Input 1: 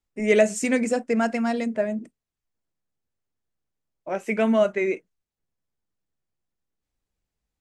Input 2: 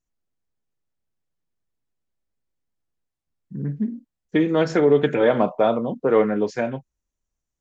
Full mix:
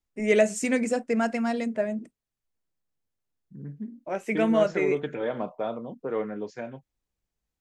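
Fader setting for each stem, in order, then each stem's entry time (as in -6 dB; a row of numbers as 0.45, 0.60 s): -2.5, -12.0 dB; 0.00, 0.00 s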